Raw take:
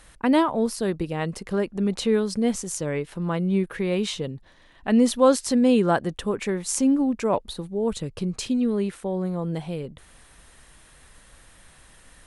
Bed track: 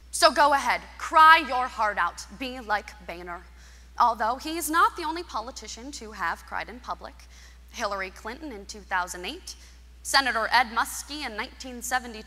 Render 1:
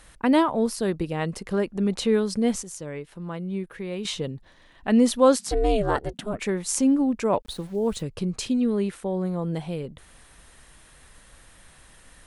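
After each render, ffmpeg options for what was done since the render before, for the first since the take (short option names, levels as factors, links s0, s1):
-filter_complex "[0:a]asplit=3[s0][s1][s2];[s0]afade=t=out:st=5.38:d=0.02[s3];[s1]aeval=exprs='val(0)*sin(2*PI*210*n/s)':c=same,afade=t=in:st=5.38:d=0.02,afade=t=out:st=6.38:d=0.02[s4];[s2]afade=t=in:st=6.38:d=0.02[s5];[s3][s4][s5]amix=inputs=3:normalize=0,asettb=1/sr,asplit=3[s6][s7][s8];[s6]atrim=end=7.424[s9];[s7]atrim=start=7.42:end=8.03,asetpts=PTS-STARTPTS,afade=t=in:d=0.004:c=qsin,afade=t=out:st=0.606:d=0.004:c=qsin,aeval=exprs='val(0)*gte(abs(val(0)),0.00531)':c=same[s10];[s8]atrim=start=8.026[s11];[s9][s10]acrossfade=d=0.004:c1=hsin:c2=qsin[s12];[s12][s11]acrossfade=d=0.004:c1=qsin:c2=hsin,asplit=3[s13][s14][s15];[s13]atrim=end=2.632[s16];[s14]atrim=start=2.628:end=4.052,asetpts=PTS-STARTPTS,volume=0.422[s17];[s15]atrim=start=4.048[s18];[s16][s17]acrossfade=d=0.004:c1=hsin:c2=hsin[s19];[s19][s18]acrossfade=d=0.004:c1=hsin:c2=hsin"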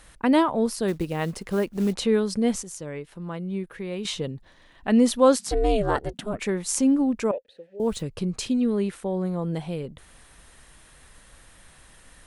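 -filter_complex "[0:a]asplit=3[s0][s1][s2];[s0]afade=t=out:st=0.87:d=0.02[s3];[s1]acrusher=bits=6:mode=log:mix=0:aa=0.000001,afade=t=in:st=0.87:d=0.02,afade=t=out:st=1.92:d=0.02[s4];[s2]afade=t=in:st=1.92:d=0.02[s5];[s3][s4][s5]amix=inputs=3:normalize=0,asettb=1/sr,asplit=3[s6][s7][s8];[s6]atrim=end=7.314[s9];[s7]atrim=start=7.31:end=7.8,asetpts=PTS-STARTPTS,afade=t=in:d=0.004:c=qsin,afade=t=out:st=0.486:d=0.004:c=qsin,asplit=3[s10][s11][s12];[s10]bandpass=f=530:t=q:w=8,volume=1[s13];[s11]bandpass=f=1840:t=q:w=8,volume=0.501[s14];[s12]bandpass=f=2480:t=q:w=8,volume=0.355[s15];[s13][s14][s15]amix=inputs=3:normalize=0[s16];[s8]atrim=start=7.796[s17];[s9][s16]acrossfade=d=0.004:c1=hsin:c2=qsin[s18];[s18][s17]acrossfade=d=0.004:c1=qsin:c2=hsin"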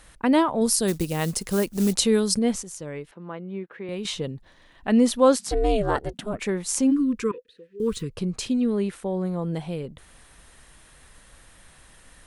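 -filter_complex "[0:a]asettb=1/sr,asplit=3[s0][s1][s2];[s0]atrim=end=0.614[s3];[s1]atrim=start=0.61:end=2.39,asetpts=PTS-STARTPTS,afade=t=in:d=0.004:c=qsin,afade=t=out:st=1.776:d=0.004:c=qsin,bass=f=250:g=3,treble=f=4000:g=14[s4];[s2]atrim=start=2.386[s5];[s3][s4]acrossfade=d=0.004:c1=hsin:c2=qsin[s6];[s6][s5]acrossfade=d=0.004:c1=qsin:c2=hsin,asettb=1/sr,asplit=3[s7][s8][s9];[s7]atrim=end=3.114[s10];[s8]atrim=start=3.11:end=3.89,asetpts=PTS-STARTPTS,afade=t=in:d=0.004:c=qsin,afade=t=out:st=0.776:d=0.004:c=qsin,highpass=230,lowpass=2700[s11];[s9]atrim=start=3.886[s12];[s10][s11]acrossfade=d=0.004:c1=hsin:c2=qsin[s13];[s13][s12]acrossfade=d=0.004:c1=qsin:c2=hsin,asplit=3[s14][s15][s16];[s14]afade=t=out:st=6.9:d=0.02[s17];[s15]asuperstop=centerf=700:order=20:qfactor=1.5,afade=t=in:st=6.9:d=0.02,afade=t=out:st=8.13:d=0.02[s18];[s16]afade=t=in:st=8.13:d=0.02[s19];[s17][s18][s19]amix=inputs=3:normalize=0"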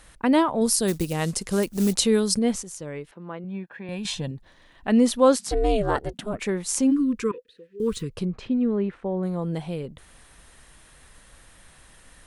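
-filter_complex "[0:a]asettb=1/sr,asplit=3[s0][s1][s2];[s0]atrim=end=1.134[s3];[s1]atrim=start=1.13:end=1.63,asetpts=PTS-STARTPTS,afade=t=in:d=0.004:c=qsin,afade=t=out:st=0.496:d=0.004:c=qsin,lowpass=f=11000:w=0.5412,lowpass=f=11000:w=1.3066[s4];[s2]atrim=start=1.626[s5];[s3][s4]acrossfade=d=0.004:c1=hsin:c2=qsin[s6];[s6][s5]acrossfade=d=0.004:c1=qsin:c2=hsin,asettb=1/sr,asplit=3[s7][s8][s9];[s7]atrim=end=3.444[s10];[s8]atrim=start=3.44:end=4.31,asetpts=PTS-STARTPTS,afade=t=in:d=0.004:c=qsin,afade=t=out:st=0.866:d=0.004:c=qsin,aecho=1:1:1.2:0.65,atrim=end_sample=38367[s11];[s9]atrim=start=4.306[s12];[s10][s11]acrossfade=d=0.004:c1=hsin:c2=qsin[s13];[s13][s12]acrossfade=d=0.004:c1=qsin:c2=hsin,asettb=1/sr,asplit=3[s14][s15][s16];[s14]atrim=end=8.254[s17];[s15]atrim=start=8.25:end=9.23,asetpts=PTS-STARTPTS,afade=t=in:d=0.004:c=qsin,afade=t=out:st=0.976:d=0.004:c=qsin,lowpass=2000[s18];[s16]atrim=start=9.226[s19];[s17][s18]acrossfade=d=0.004:c1=hsin:c2=qsin[s20];[s20][s19]acrossfade=d=0.004:c1=qsin:c2=hsin"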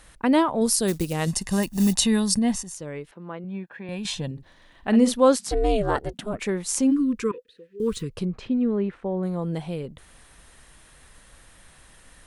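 -filter_complex "[0:a]asettb=1/sr,asplit=3[s0][s1][s2];[s0]atrim=end=1.274[s3];[s1]atrim=start=1.27:end=2.74,asetpts=PTS-STARTPTS,afade=t=in:d=0.004:c=qsin,afade=t=out:st=1.466:d=0.004:c=qsin,aecho=1:1:1.1:0.65,atrim=end_sample=64827[s4];[s2]atrim=start=2.736[s5];[s3][s4]acrossfade=d=0.004:c1=hsin:c2=qsin[s6];[s6][s5]acrossfade=d=0.004:c1=qsin:c2=hsin,asettb=1/sr,asplit=3[s7][s8][s9];[s7]atrim=end=4.324[s10];[s8]atrim=start=4.32:end=5.14,asetpts=PTS-STARTPTS,afade=t=in:d=0.004:c=qsin,afade=t=out:st=0.816:d=0.004:c=qsin,asplit=2[s11][s12];[s12]adelay=49,volume=0.316[s13];[s11][s13]amix=inputs=2:normalize=0,atrim=end_sample=36162[s14];[s9]atrim=start=5.136[s15];[s10][s14]acrossfade=d=0.004:c1=hsin:c2=qsin[s16];[s16][s15]acrossfade=d=0.004:c1=qsin:c2=hsin"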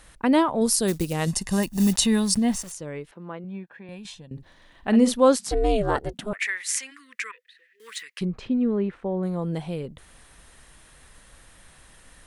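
-filter_complex "[0:a]asettb=1/sr,asplit=3[s0][s1][s2];[s0]atrim=end=1.784[s3];[s1]atrim=start=1.78:end=2.72,asetpts=PTS-STARTPTS,afade=t=in:d=0.004:c=qsin,afade=t=out:st=0.936:d=0.004:c=qsin,aeval=exprs='val(0)*gte(abs(val(0)),0.0112)':c=same[s4];[s2]atrim=start=2.716[s5];[s3][s4]acrossfade=d=0.004:c1=hsin:c2=qsin[s6];[s6][s5]acrossfade=d=0.004:c1=qsin:c2=hsin,asettb=1/sr,asplit=3[s7][s8][s9];[s7]atrim=end=6.334[s10];[s8]atrim=start=6.33:end=8.21,asetpts=PTS-STARTPTS,afade=t=in:d=0.004:c=qsin,afade=t=out:st=1.876:d=0.004:c=qsin,highpass=f=1900:t=q:w=5.5[s11];[s9]atrim=start=8.206[s12];[s10][s11]acrossfade=d=0.004:c1=hsin:c2=qsin[s13];[s13][s12]acrossfade=d=0.004:c1=qsin:c2=hsin,asplit=2[s14][s15];[s14]atrim=end=4.31,asetpts=PTS-STARTPTS,afade=t=out:st=3.25:d=1.06:silence=0.105925[s16];[s15]atrim=start=4.31,asetpts=PTS-STARTPTS,afade=t=in:d=0.004:c=hsin:silence=0.105925[s17];[s16][s17]concat=n=2:v=0:a=1"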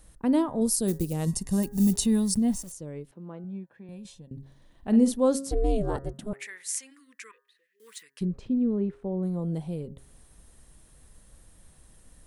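-af "equalizer=f=2000:w=0.36:g=-14.5,bandreject=f=136.3:t=h:w=4,bandreject=f=272.6:t=h:w=4,bandreject=f=408.9:t=h:w=4,bandreject=f=545.2:t=h:w=4,bandreject=f=681.5:t=h:w=4,bandreject=f=817.8:t=h:w=4,bandreject=f=954.1:t=h:w=4,bandreject=f=1090.4:t=h:w=4,bandreject=f=1226.7:t=h:w=4,bandreject=f=1363:t=h:w=4,bandreject=f=1499.3:t=h:w=4,bandreject=f=1635.6:t=h:w=4,bandreject=f=1771.9:t=h:w=4,bandreject=f=1908.2:t=h:w=4"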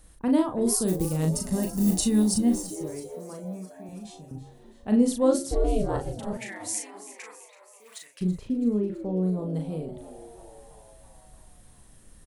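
-filter_complex "[0:a]asplit=2[s0][s1];[s1]adelay=38,volume=0.596[s2];[s0][s2]amix=inputs=2:normalize=0,asplit=7[s3][s4][s5][s6][s7][s8][s9];[s4]adelay=330,afreqshift=94,volume=0.178[s10];[s5]adelay=660,afreqshift=188,volume=0.105[s11];[s6]adelay=990,afreqshift=282,volume=0.0617[s12];[s7]adelay=1320,afreqshift=376,volume=0.0367[s13];[s8]adelay=1650,afreqshift=470,volume=0.0216[s14];[s9]adelay=1980,afreqshift=564,volume=0.0127[s15];[s3][s10][s11][s12][s13][s14][s15]amix=inputs=7:normalize=0"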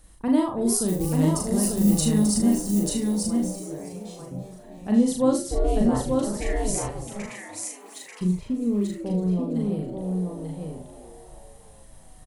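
-filter_complex "[0:a]asplit=2[s0][s1];[s1]adelay=39,volume=0.596[s2];[s0][s2]amix=inputs=2:normalize=0,aecho=1:1:889:0.668"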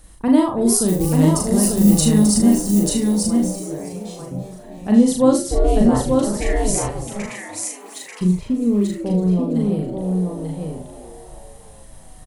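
-af "volume=2.11"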